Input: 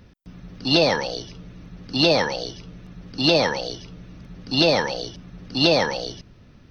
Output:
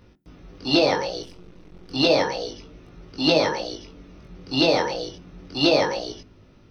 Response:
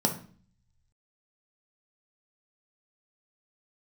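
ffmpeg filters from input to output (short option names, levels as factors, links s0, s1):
-filter_complex "[0:a]asettb=1/sr,asplit=3[s0][s1][s2];[s0]atrim=end=1.234[s3];[s1]atrim=start=1.23:end=1.91,asetpts=PTS-STARTPTS,afade=t=in:d=0.004:c=qsin,afade=t=out:st=0.676:d=0.004:c=qsin,aeval=exprs='max(val(0),0)':c=same[s4];[s2]atrim=start=1.906[s5];[s3][s4]acrossfade=d=0.004:c1=hsin:c2=qsin[s6];[s6][s5]acrossfade=d=0.004:c1=qsin:c2=hsin,flanger=delay=19:depth=3.6:speed=0.31,asplit=2[s7][s8];[1:a]atrim=start_sample=2205,asetrate=70560,aresample=44100[s9];[s8][s9]afir=irnorm=-1:irlink=0,volume=0.168[s10];[s7][s10]amix=inputs=2:normalize=0"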